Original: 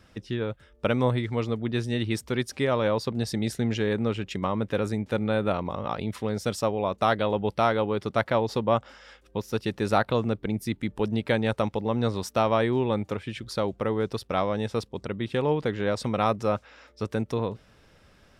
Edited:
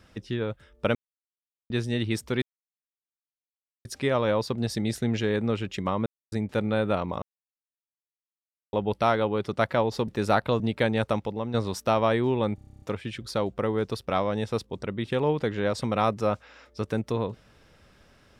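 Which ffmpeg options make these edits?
-filter_complex "[0:a]asplit=20[a][b][c][d][e][f][g][h][i][j][k][l][m][n][o][p][q][r][s][t];[a]atrim=end=0.95,asetpts=PTS-STARTPTS,afade=t=out:st=0.946:d=0.004:c=hsin[u];[b]atrim=start=0.95:end=1.7,asetpts=PTS-STARTPTS,volume=0[v];[c]atrim=start=1.7:end=2.42,asetpts=PTS-STARTPTS,afade=t=in:d=0.004:c=hsin,afade=t=out:st=0.716:d=0.004:c=hsin,apad=pad_dur=1.43[w];[d]atrim=start=2.42:end=4.63,asetpts=PTS-STARTPTS,afade=t=in:d=0.004:c=hsin,afade=t=out:st=2.206:d=0.004:c=hsin[x];[e]atrim=start=4.63:end=4.89,asetpts=PTS-STARTPTS,volume=0[y];[f]atrim=start=4.89:end=5.79,asetpts=PTS-STARTPTS,afade=t=in:d=0.004:c=hsin,afade=t=out:st=0.896:d=0.004:c=hsin[z];[g]atrim=start=5.79:end=7.3,asetpts=PTS-STARTPTS,volume=0[aa];[h]atrim=start=7.3:end=8.652,asetpts=PTS-STARTPTS,afade=t=in:d=0.004:c=hsin[ab];[i]atrim=start=9.708:end=10.232[ac];[j]atrim=start=11.088:end=12.03,asetpts=PTS-STARTPTS,afade=t=out:st=0.502:d=0.44:silence=0.421697[ad];[k]atrim=start=12.03:end=13.072,asetpts=PTS-STARTPTS,afade=t=in:d=0.004:c=hsin:silence=0.421697[ae];[l]atrim=start=13.038:end=13.072[af];[m]atrim=start=13.038:end=13.072[ag];[n]atrim=start=13.038:end=13.072[ah];[o]atrim=start=13.038:end=13.072[ai];[p]atrim=start=13.038:end=13.072[aj];[q]atrim=start=13.038:end=13.072[ak];[r]atrim=start=13.038:end=13.072[al];[s]atrim=start=13.038:end=13.072[am];[t]atrim=start=13.038[an];[u][v][w][x][y][z][aa][ab]concat=n=8:v=0:a=1[ao];[ao][ac]acrossfade=d=0.004:c1=hsin:c2=hsin[ap];[ad][ae]concat=n=2:v=0:a=1[aq];[ap][aq]acrossfade=d=0.004:c1=hsin:c2=hsin[ar];[ar][af]acrossfade=d=0.004:c1=hsin:c2=hsin[as];[as][ag]acrossfade=d=0.004:c1=hsin:c2=hsin[at];[at][ah]acrossfade=d=0.004:c1=hsin:c2=hsin[au];[au][ai]acrossfade=d=0.004:c1=hsin:c2=hsin[av];[av][aj]acrossfade=d=0.004:c1=hsin:c2=hsin[aw];[aw][ak]acrossfade=d=0.004:c1=hsin:c2=hsin[ax];[ax][al]acrossfade=d=0.004:c1=hsin:c2=hsin[ay];[ay][am]acrossfade=d=0.004:c1=hsin:c2=hsin[az];[az][an]acrossfade=d=0.004:c1=hsin:c2=hsin"

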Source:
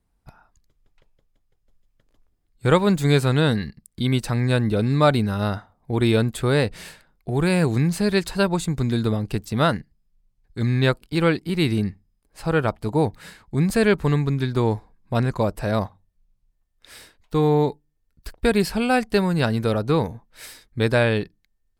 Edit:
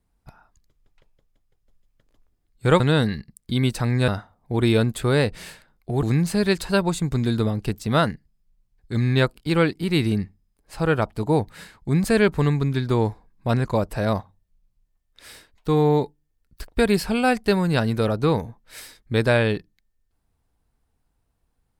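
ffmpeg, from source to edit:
-filter_complex "[0:a]asplit=4[a][b][c][d];[a]atrim=end=2.802[e];[b]atrim=start=3.288:end=4.572[f];[c]atrim=start=5.468:end=7.422[g];[d]atrim=start=7.688[h];[e][f]acrossfade=d=0.004:c1=hsin:c2=hsin[i];[i][g]acrossfade=d=0.004:c1=hsin:c2=hsin[j];[j][h]acrossfade=d=0.004:c1=hsin:c2=hsin"

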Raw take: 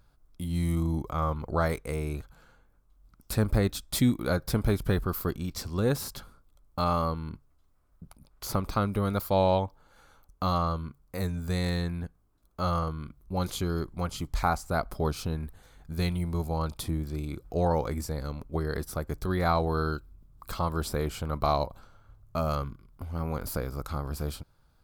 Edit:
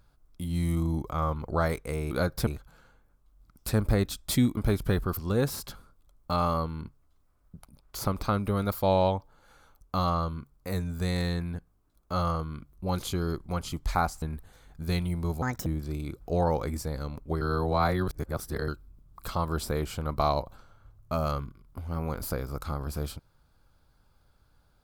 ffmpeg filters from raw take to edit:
-filter_complex "[0:a]asplit=10[a][b][c][d][e][f][g][h][i][j];[a]atrim=end=2.112[k];[b]atrim=start=4.208:end=4.572[l];[c]atrim=start=2.108:end=4.212[m];[d]atrim=start=4.568:end=5.172[n];[e]atrim=start=5.648:end=14.702[o];[f]atrim=start=15.318:end=16.524[p];[g]atrim=start=16.52:end=16.9,asetpts=PTS-STARTPTS,asetrate=69678,aresample=44100,atrim=end_sample=10606,asetpts=PTS-STARTPTS[q];[h]atrim=start=16.896:end=18.652[r];[i]atrim=start=18.648:end=19.922,asetpts=PTS-STARTPTS,areverse[s];[j]atrim=start=19.918[t];[k][l]acrossfade=d=0.004:c1=hsin:c2=hsin[u];[u][m]acrossfade=d=0.004:c1=hsin:c2=hsin[v];[v][n]acrossfade=d=0.004:c1=hsin:c2=hsin[w];[w][o]acrossfade=d=0.004:c1=hsin:c2=hsin[x];[x][p]acrossfade=d=0.004:c1=hsin:c2=hsin[y];[y][q]acrossfade=d=0.004:c1=hsin:c2=hsin[z];[z][r]acrossfade=d=0.004:c1=hsin:c2=hsin[aa];[aa][s]acrossfade=d=0.004:c1=hsin:c2=hsin[ab];[ab][t]acrossfade=d=0.004:c1=hsin:c2=hsin"

